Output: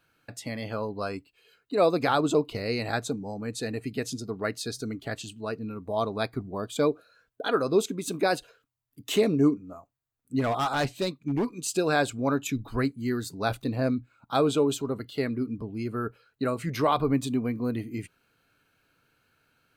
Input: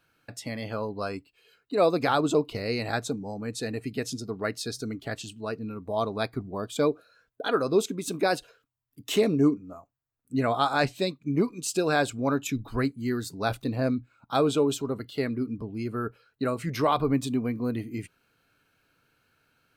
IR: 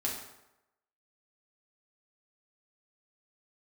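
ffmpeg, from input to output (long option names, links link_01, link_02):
-filter_complex "[0:a]bandreject=frequency=5400:width=18,asplit=3[link_01][link_02][link_03];[link_01]afade=type=out:start_time=10.39:duration=0.02[link_04];[link_02]volume=22dB,asoftclip=hard,volume=-22dB,afade=type=in:start_time=10.39:duration=0.02,afade=type=out:start_time=11.52:duration=0.02[link_05];[link_03]afade=type=in:start_time=11.52:duration=0.02[link_06];[link_04][link_05][link_06]amix=inputs=3:normalize=0"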